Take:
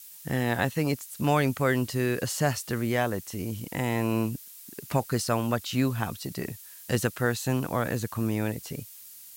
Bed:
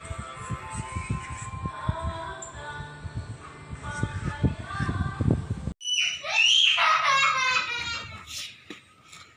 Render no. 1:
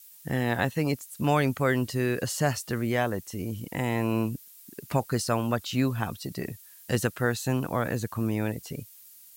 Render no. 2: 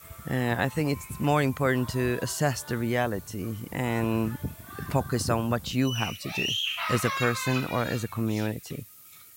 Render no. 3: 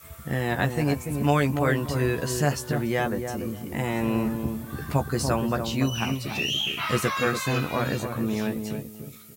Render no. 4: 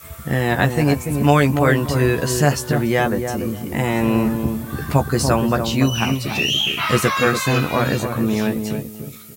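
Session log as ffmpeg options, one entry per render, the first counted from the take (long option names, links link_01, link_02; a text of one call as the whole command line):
ffmpeg -i in.wav -af "afftdn=noise_reduction=6:noise_floor=-47" out.wav
ffmpeg -i in.wav -i bed.wav -filter_complex "[1:a]volume=-9.5dB[link_01];[0:a][link_01]amix=inputs=2:normalize=0" out.wav
ffmpeg -i in.wav -filter_complex "[0:a]asplit=2[link_01][link_02];[link_02]adelay=14,volume=-6dB[link_03];[link_01][link_03]amix=inputs=2:normalize=0,asplit=2[link_04][link_05];[link_05]adelay=289,lowpass=frequency=830:poles=1,volume=-5dB,asplit=2[link_06][link_07];[link_07]adelay=289,lowpass=frequency=830:poles=1,volume=0.27,asplit=2[link_08][link_09];[link_09]adelay=289,lowpass=frequency=830:poles=1,volume=0.27,asplit=2[link_10][link_11];[link_11]adelay=289,lowpass=frequency=830:poles=1,volume=0.27[link_12];[link_06][link_08][link_10][link_12]amix=inputs=4:normalize=0[link_13];[link_04][link_13]amix=inputs=2:normalize=0" out.wav
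ffmpeg -i in.wav -af "volume=7.5dB" out.wav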